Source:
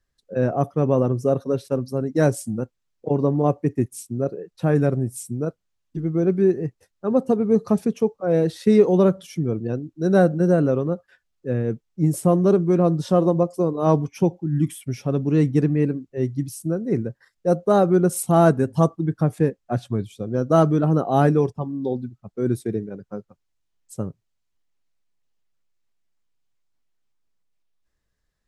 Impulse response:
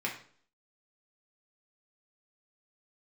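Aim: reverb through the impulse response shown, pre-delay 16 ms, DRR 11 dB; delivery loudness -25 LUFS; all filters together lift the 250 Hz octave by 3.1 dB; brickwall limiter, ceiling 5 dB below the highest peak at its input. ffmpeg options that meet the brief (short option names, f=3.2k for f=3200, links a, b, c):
-filter_complex "[0:a]equalizer=f=250:t=o:g=4.5,alimiter=limit=-7.5dB:level=0:latency=1,asplit=2[a][b];[1:a]atrim=start_sample=2205,adelay=16[c];[b][c]afir=irnorm=-1:irlink=0,volume=-16.5dB[d];[a][d]amix=inputs=2:normalize=0,volume=-4.5dB"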